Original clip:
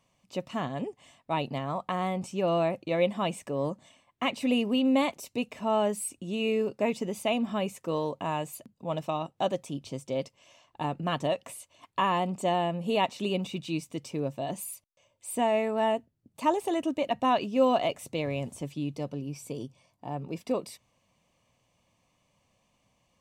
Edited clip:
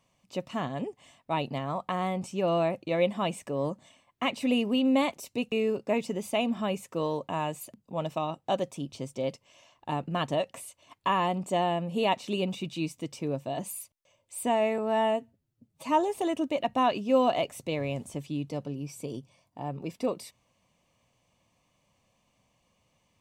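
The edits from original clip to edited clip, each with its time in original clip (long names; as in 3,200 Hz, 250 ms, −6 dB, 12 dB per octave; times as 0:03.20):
0:05.52–0:06.44: remove
0:15.70–0:16.61: time-stretch 1.5×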